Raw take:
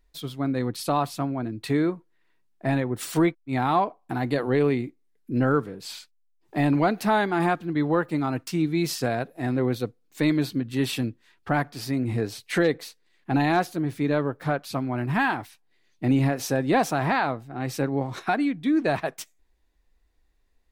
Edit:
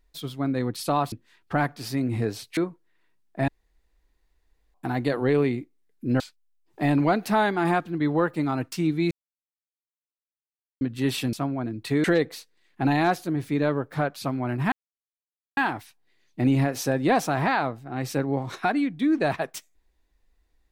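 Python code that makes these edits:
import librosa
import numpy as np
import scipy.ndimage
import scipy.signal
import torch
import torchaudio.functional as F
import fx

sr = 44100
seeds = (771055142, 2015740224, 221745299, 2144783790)

y = fx.edit(x, sr, fx.swap(start_s=1.12, length_s=0.71, other_s=11.08, other_length_s=1.45),
    fx.room_tone_fill(start_s=2.74, length_s=1.26),
    fx.cut(start_s=5.46, length_s=0.49),
    fx.silence(start_s=8.86, length_s=1.7),
    fx.insert_silence(at_s=15.21, length_s=0.85), tone=tone)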